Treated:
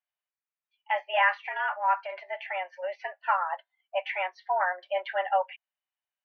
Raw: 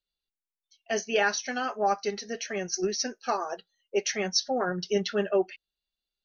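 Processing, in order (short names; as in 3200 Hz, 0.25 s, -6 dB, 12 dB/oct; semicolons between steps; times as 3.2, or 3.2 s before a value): 1.13–2.23 transient shaper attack -10 dB, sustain +3 dB; mistuned SSB +180 Hz 480–2500 Hz; gain +3.5 dB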